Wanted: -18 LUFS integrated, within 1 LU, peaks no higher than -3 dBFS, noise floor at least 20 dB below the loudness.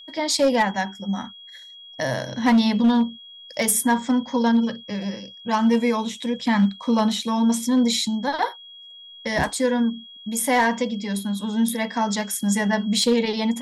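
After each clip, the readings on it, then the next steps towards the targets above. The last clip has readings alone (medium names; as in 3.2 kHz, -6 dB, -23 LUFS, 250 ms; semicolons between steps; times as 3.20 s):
clipped samples 0.6%; clipping level -12.0 dBFS; steady tone 3.3 kHz; tone level -41 dBFS; loudness -22.0 LUFS; peak level -12.0 dBFS; loudness target -18.0 LUFS
-> clip repair -12 dBFS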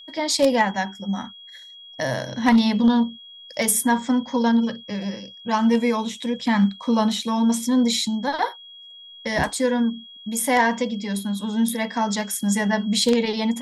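clipped samples 0.0%; steady tone 3.3 kHz; tone level -41 dBFS
-> band-stop 3.3 kHz, Q 30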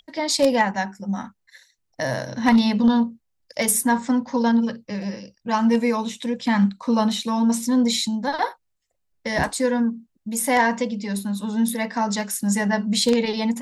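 steady tone not found; loudness -22.0 LUFS; peak level -3.0 dBFS; loudness target -18.0 LUFS
-> trim +4 dB; peak limiter -3 dBFS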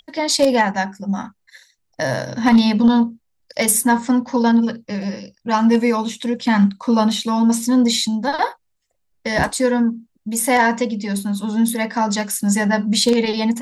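loudness -18.0 LUFS; peak level -3.0 dBFS; noise floor -69 dBFS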